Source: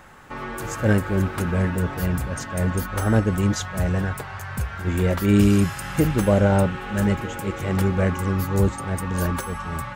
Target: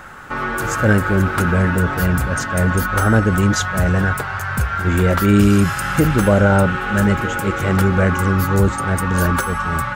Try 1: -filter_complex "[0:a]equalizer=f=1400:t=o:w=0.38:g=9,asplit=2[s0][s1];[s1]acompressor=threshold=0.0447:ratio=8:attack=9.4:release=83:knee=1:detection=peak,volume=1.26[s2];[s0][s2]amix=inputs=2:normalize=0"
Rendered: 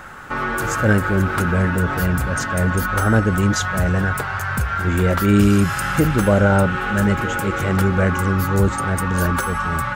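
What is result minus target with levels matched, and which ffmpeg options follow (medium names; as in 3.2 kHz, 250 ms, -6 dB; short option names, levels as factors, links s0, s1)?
compression: peak gain reduction +5 dB
-filter_complex "[0:a]equalizer=f=1400:t=o:w=0.38:g=9,asplit=2[s0][s1];[s1]acompressor=threshold=0.0891:ratio=8:attack=9.4:release=83:knee=1:detection=peak,volume=1.26[s2];[s0][s2]amix=inputs=2:normalize=0"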